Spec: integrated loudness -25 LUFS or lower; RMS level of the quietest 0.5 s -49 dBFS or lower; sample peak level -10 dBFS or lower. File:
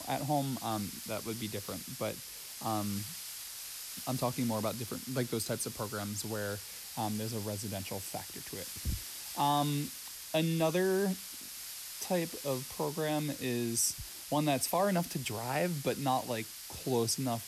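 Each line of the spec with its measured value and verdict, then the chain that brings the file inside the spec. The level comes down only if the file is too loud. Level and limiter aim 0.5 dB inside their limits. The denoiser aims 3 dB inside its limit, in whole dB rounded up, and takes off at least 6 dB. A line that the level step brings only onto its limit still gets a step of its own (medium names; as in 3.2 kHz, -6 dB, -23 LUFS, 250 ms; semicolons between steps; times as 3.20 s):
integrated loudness -34.5 LUFS: pass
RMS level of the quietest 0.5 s -46 dBFS: fail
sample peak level -18.5 dBFS: pass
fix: noise reduction 6 dB, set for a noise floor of -46 dBFS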